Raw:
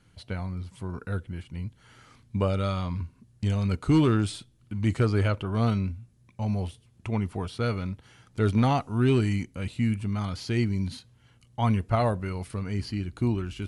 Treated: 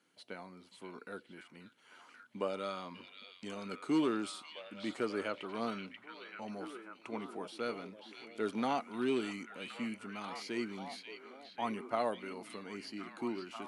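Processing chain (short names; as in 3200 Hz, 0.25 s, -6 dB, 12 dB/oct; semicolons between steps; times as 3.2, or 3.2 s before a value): HPF 250 Hz 24 dB/oct; on a send: delay with a stepping band-pass 0.536 s, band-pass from 3100 Hz, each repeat -0.7 oct, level -3 dB; on the sum: gain -7.5 dB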